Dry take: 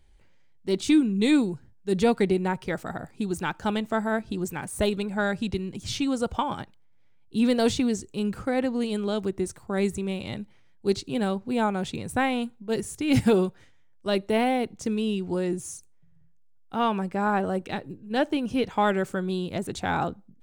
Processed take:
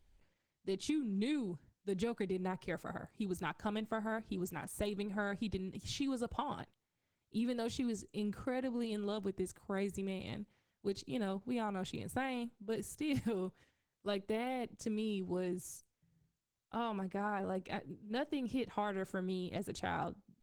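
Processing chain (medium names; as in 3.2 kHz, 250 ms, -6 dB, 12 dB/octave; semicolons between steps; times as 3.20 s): compression 20:1, threshold -23 dBFS, peak gain reduction 9 dB; trim -9 dB; Opus 16 kbps 48 kHz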